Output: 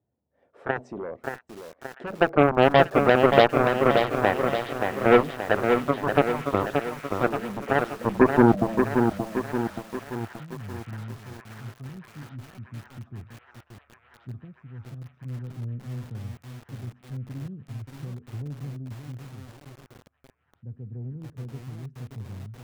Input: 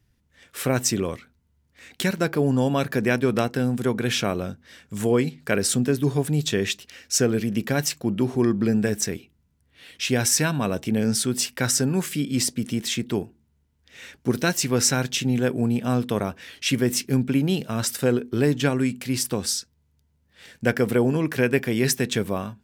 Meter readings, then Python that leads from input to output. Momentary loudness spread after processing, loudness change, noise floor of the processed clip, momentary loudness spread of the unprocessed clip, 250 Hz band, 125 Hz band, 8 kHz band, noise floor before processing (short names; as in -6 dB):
23 LU, +0.5 dB, -67 dBFS, 7 LU, -4.5 dB, -5.5 dB, -26.0 dB, -67 dBFS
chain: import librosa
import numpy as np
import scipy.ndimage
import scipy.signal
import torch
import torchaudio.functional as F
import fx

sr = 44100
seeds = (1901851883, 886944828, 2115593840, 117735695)

p1 = scipy.signal.sosfilt(scipy.signal.butter(4, 71.0, 'highpass', fs=sr, output='sos'), x)
p2 = fx.bass_treble(p1, sr, bass_db=-8, treble_db=8)
p3 = fx.rider(p2, sr, range_db=4, speed_s=0.5)
p4 = fx.filter_sweep_lowpass(p3, sr, from_hz=670.0, to_hz=100.0, start_s=7.87, end_s=9.1, q=2.5)
p5 = fx.cheby_harmonics(p4, sr, harmonics=(2, 7), levels_db=(-42, -12), full_scale_db=-4.5)
p6 = p5 + fx.echo_wet_highpass(p5, sr, ms=636, feedback_pct=82, hz=1600.0, wet_db=-15.0, dry=0)
p7 = fx.echo_crushed(p6, sr, ms=577, feedback_pct=55, bits=7, wet_db=-5)
y = p7 * librosa.db_to_amplitude(-1.0)